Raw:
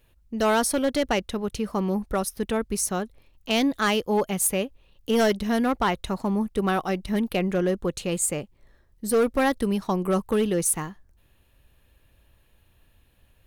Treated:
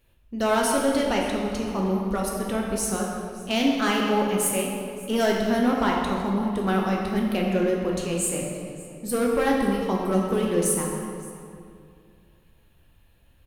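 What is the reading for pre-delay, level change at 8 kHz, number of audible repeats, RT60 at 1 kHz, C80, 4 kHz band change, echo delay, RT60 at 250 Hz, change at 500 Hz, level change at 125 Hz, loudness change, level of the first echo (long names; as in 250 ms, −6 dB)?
6 ms, −0.5 dB, 1, 2.3 s, 2.5 dB, 0.0 dB, 570 ms, 2.6 s, +0.5 dB, +1.0 dB, +0.5 dB, −19.5 dB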